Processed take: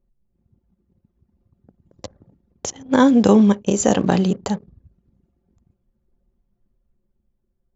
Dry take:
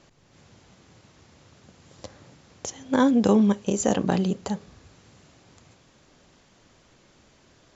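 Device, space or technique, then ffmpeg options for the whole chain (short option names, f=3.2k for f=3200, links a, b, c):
voice memo with heavy noise removal: -af "anlmdn=0.1,dynaudnorm=f=200:g=11:m=3.5dB,volume=3dB"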